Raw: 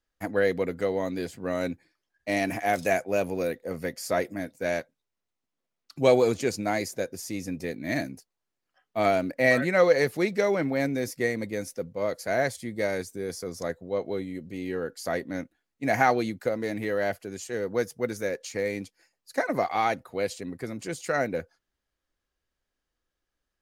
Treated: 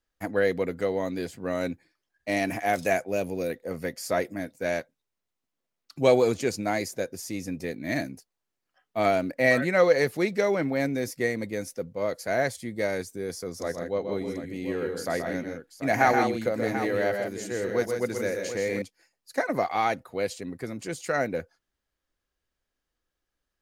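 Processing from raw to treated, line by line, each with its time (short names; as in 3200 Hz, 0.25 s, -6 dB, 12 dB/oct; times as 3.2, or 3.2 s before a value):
3.09–3.5 bell 1200 Hz -6.5 dB 1.6 oct
13.47–18.82 tapped delay 0.127/0.162/0.737 s -6.5/-7.5/-11 dB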